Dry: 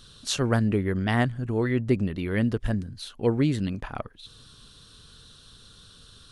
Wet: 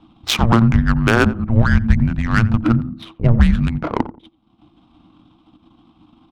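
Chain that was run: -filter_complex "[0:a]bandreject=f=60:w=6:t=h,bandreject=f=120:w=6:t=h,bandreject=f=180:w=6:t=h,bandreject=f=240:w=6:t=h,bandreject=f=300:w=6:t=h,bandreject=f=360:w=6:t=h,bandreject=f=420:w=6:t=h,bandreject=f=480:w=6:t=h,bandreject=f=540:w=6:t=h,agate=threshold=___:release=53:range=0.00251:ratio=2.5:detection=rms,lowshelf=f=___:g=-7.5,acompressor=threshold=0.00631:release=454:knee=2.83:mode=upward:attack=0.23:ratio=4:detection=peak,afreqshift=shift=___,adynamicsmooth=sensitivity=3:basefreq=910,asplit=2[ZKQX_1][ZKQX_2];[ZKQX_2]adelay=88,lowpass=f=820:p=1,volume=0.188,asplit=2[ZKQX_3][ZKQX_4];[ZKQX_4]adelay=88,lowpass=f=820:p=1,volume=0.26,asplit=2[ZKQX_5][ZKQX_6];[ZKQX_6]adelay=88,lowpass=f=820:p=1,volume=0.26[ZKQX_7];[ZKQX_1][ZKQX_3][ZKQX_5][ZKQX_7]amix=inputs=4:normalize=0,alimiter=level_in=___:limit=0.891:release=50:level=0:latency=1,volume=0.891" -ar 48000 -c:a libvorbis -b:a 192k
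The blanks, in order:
0.00794, 390, -340, 7.5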